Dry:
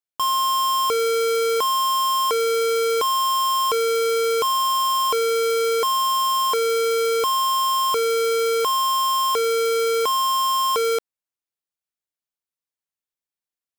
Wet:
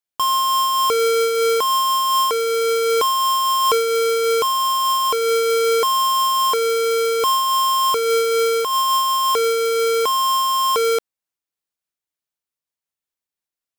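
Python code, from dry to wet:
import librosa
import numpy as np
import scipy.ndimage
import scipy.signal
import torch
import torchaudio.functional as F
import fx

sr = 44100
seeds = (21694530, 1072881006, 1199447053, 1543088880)

y = fx.am_noise(x, sr, seeds[0], hz=5.7, depth_pct=55)
y = F.gain(torch.from_numpy(y), 5.0).numpy()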